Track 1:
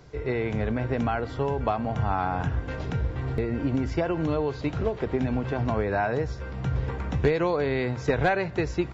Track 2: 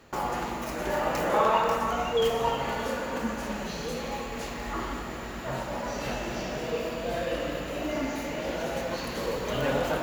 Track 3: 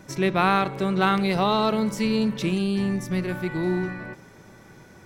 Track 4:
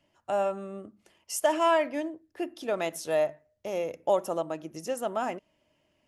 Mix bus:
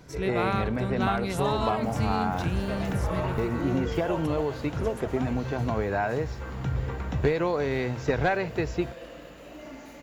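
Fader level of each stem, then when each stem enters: -1.5 dB, -12.5 dB, -8.5 dB, -10.0 dB; 0.00 s, 1.70 s, 0.00 s, 0.00 s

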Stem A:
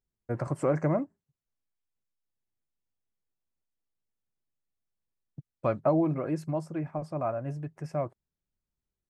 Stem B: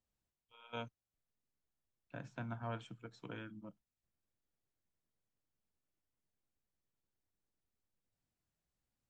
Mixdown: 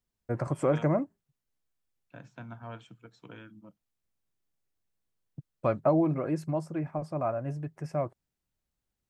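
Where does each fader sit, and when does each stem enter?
+0.5 dB, -0.5 dB; 0.00 s, 0.00 s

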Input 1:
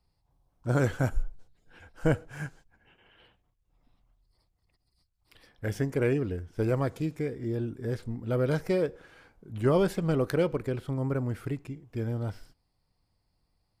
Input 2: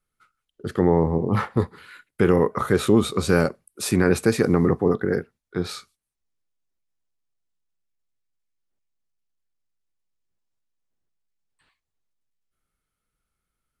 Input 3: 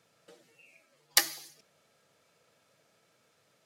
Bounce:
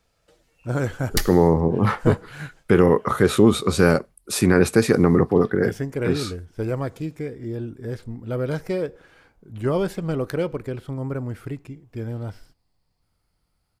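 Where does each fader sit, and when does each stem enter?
+1.5 dB, +2.5 dB, -2.0 dB; 0.00 s, 0.50 s, 0.00 s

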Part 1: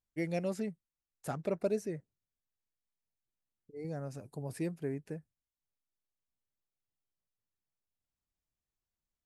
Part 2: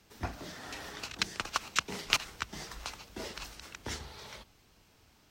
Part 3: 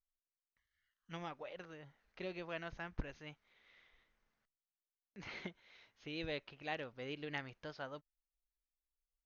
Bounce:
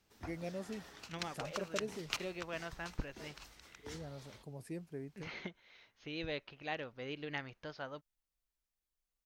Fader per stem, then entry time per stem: -8.0 dB, -11.0 dB, +1.5 dB; 0.10 s, 0.00 s, 0.00 s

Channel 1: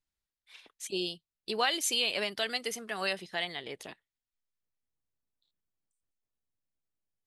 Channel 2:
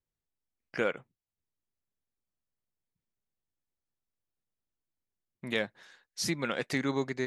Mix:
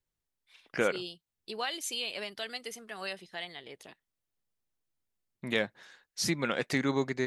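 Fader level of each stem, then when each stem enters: -6.0 dB, +1.5 dB; 0.00 s, 0.00 s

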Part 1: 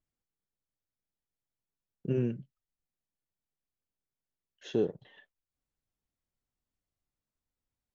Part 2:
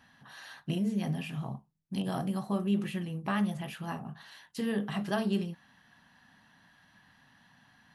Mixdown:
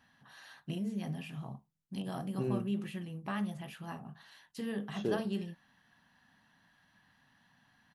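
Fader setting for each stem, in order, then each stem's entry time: -5.0 dB, -6.0 dB; 0.30 s, 0.00 s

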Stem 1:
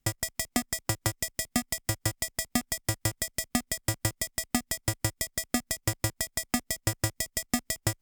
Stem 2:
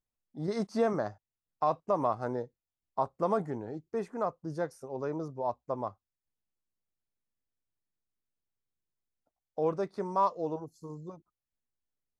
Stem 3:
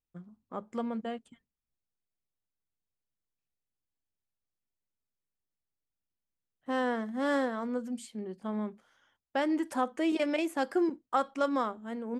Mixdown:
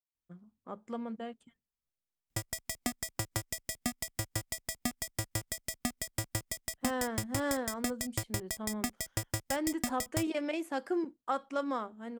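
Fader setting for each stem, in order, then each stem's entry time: -6.5 dB, mute, -4.5 dB; 2.30 s, mute, 0.15 s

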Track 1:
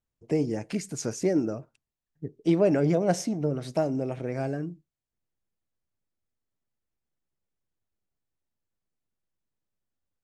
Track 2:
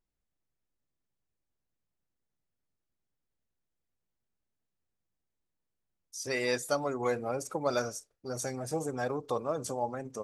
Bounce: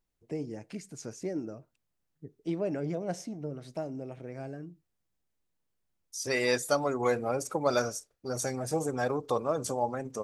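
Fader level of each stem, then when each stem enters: -10.0 dB, +3.0 dB; 0.00 s, 0.00 s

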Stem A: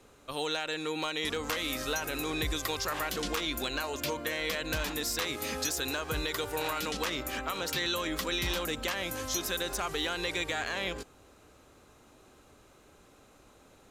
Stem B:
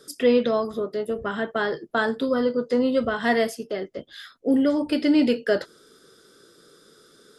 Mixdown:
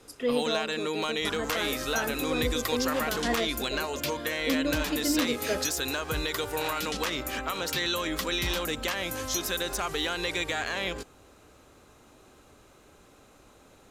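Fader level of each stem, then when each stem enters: +2.5 dB, -9.0 dB; 0.00 s, 0.00 s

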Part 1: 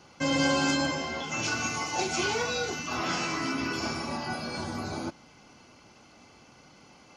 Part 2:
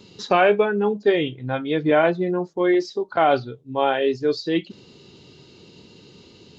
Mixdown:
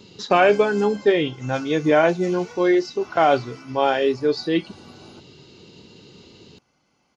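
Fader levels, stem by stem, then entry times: -12.5 dB, +1.0 dB; 0.10 s, 0.00 s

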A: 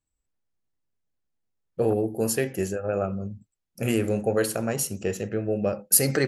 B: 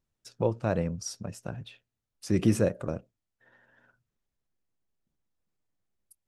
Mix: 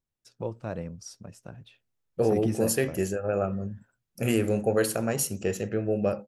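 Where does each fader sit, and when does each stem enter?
-0.5 dB, -6.5 dB; 0.40 s, 0.00 s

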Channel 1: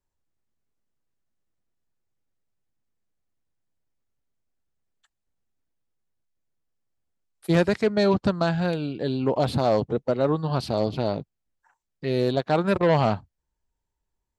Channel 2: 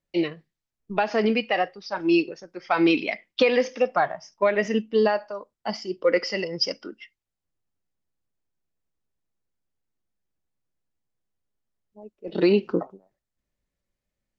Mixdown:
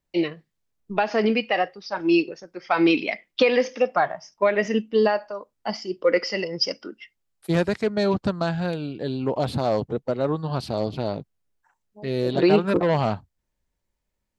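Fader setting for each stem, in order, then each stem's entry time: -1.5 dB, +1.0 dB; 0.00 s, 0.00 s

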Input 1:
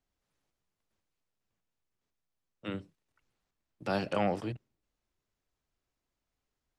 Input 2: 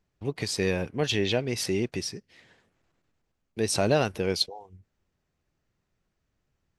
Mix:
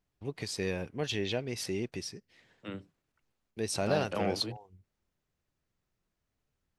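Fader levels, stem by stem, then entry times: -3.5 dB, -7.0 dB; 0.00 s, 0.00 s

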